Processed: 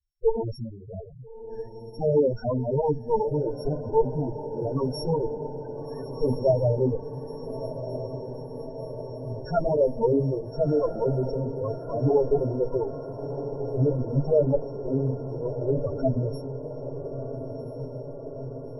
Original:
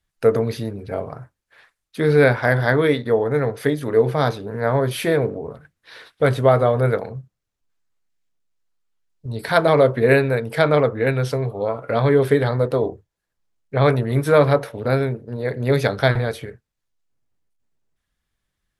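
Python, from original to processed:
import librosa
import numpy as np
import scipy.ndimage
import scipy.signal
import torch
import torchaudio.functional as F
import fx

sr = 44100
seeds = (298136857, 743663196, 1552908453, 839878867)

p1 = np.r_[np.sort(x[:len(x) // 8 * 8].reshape(-1, 8), axis=1).ravel(), x[len(x) // 8 * 8:]]
p2 = fx.cheby_harmonics(p1, sr, harmonics=(8,), levels_db=(-9,), full_scale_db=-1.5)
p3 = fx.spec_topn(p2, sr, count=4)
p4 = p3 + fx.echo_diffused(p3, sr, ms=1344, feedback_pct=73, wet_db=-10.5, dry=0)
y = p4 * 10.0 ** (-5.5 / 20.0)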